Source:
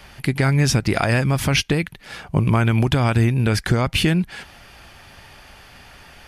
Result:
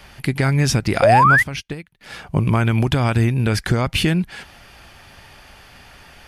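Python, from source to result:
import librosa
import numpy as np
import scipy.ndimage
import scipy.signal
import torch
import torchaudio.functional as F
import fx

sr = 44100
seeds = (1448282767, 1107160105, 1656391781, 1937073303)

y = fx.spec_paint(x, sr, seeds[0], shape='rise', start_s=1.02, length_s=0.41, low_hz=510.0, high_hz=2100.0, level_db=-12.0)
y = fx.upward_expand(y, sr, threshold_db=-25.0, expansion=2.5, at=(1.27, 2.01))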